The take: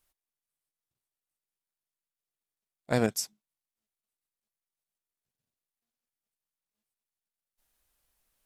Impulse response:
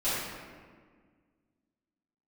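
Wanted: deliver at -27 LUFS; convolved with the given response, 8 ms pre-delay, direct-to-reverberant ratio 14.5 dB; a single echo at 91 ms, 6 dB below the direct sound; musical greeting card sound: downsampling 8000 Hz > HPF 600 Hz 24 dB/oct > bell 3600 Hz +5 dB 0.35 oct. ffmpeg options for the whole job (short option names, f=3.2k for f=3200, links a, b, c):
-filter_complex "[0:a]aecho=1:1:91:0.501,asplit=2[a][b];[1:a]atrim=start_sample=2205,adelay=8[c];[b][c]afir=irnorm=-1:irlink=0,volume=-25dB[d];[a][d]amix=inputs=2:normalize=0,aresample=8000,aresample=44100,highpass=f=600:w=0.5412,highpass=f=600:w=1.3066,equalizer=f=3.6k:t=o:w=0.35:g=5,volume=8.5dB"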